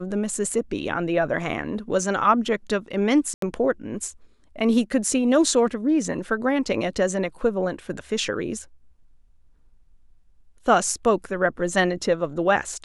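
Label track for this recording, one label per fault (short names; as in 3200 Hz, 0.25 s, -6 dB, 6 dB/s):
3.340000	3.420000	gap 83 ms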